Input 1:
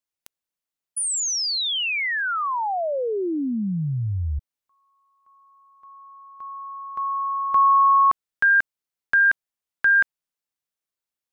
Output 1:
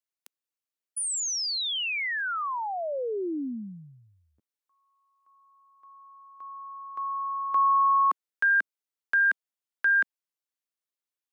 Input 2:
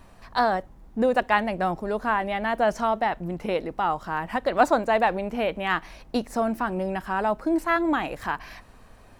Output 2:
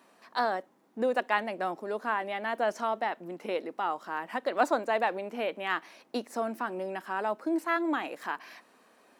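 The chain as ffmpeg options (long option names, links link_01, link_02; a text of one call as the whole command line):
ffmpeg -i in.wav -af "highpass=frequency=250:width=0.5412,highpass=frequency=250:width=1.3066,equalizer=frequency=770:width_type=o:width=0.77:gain=-2,volume=-5dB" out.wav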